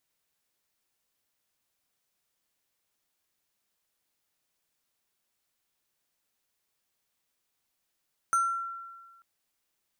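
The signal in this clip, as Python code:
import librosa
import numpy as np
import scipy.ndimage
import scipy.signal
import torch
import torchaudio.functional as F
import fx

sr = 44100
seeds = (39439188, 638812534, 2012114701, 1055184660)

y = fx.fm2(sr, length_s=0.89, level_db=-20.5, carrier_hz=1360.0, ratio=5.54, index=0.5, index_s=0.56, decay_s=1.48, shape='exponential')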